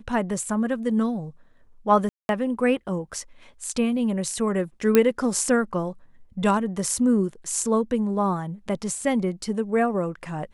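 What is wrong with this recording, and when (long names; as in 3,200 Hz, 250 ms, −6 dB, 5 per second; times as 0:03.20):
0:02.09–0:02.29: drop-out 201 ms
0:04.95: click −4 dBFS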